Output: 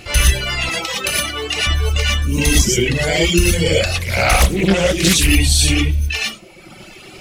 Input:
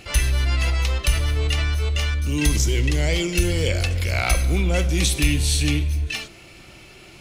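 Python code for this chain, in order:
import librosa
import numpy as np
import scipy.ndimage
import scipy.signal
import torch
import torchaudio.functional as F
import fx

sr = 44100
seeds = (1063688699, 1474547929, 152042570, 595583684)

y = fx.rev_gated(x, sr, seeds[0], gate_ms=140, shape='rising', drr_db=-4.5)
y = fx.dereverb_blind(y, sr, rt60_s=1.3)
y = fx.highpass(y, sr, hz=220.0, slope=12, at=(0.69, 1.67))
y = fx.doppler_dist(y, sr, depth_ms=0.6, at=(3.96, 5.28))
y = y * librosa.db_to_amplitude(5.0)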